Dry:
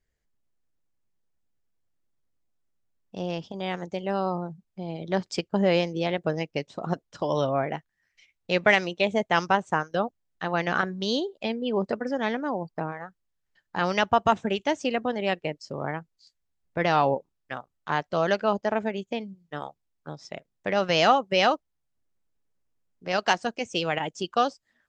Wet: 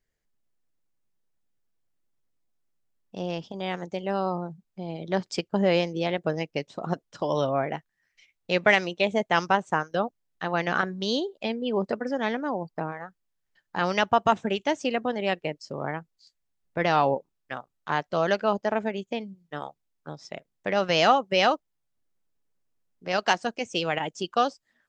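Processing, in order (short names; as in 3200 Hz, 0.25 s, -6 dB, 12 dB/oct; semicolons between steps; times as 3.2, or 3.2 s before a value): bell 61 Hz -8 dB 1.1 oct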